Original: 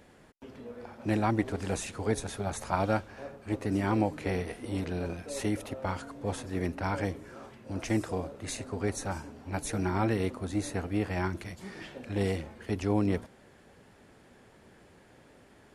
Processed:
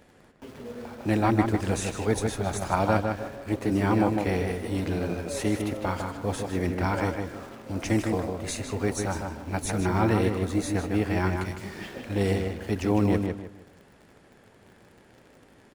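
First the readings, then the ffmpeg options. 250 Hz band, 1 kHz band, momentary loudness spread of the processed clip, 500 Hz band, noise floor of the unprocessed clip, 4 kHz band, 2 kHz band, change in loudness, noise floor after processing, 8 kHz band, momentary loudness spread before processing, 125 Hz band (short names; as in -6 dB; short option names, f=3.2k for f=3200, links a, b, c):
+5.5 dB, +5.0 dB, 11 LU, +5.5 dB, -58 dBFS, +5.0 dB, +5.0 dB, +5.0 dB, -56 dBFS, +4.5 dB, 14 LU, +5.5 dB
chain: -filter_complex "[0:a]asplit=2[a][b];[b]acrusher=bits=7:mix=0:aa=0.000001,volume=-5dB[c];[a][c]amix=inputs=2:normalize=0,asplit=2[d][e];[e]adelay=154,lowpass=f=3.8k:p=1,volume=-4.5dB,asplit=2[f][g];[g]adelay=154,lowpass=f=3.8k:p=1,volume=0.3,asplit=2[h][i];[i]adelay=154,lowpass=f=3.8k:p=1,volume=0.3,asplit=2[j][k];[k]adelay=154,lowpass=f=3.8k:p=1,volume=0.3[l];[d][f][h][j][l]amix=inputs=5:normalize=0"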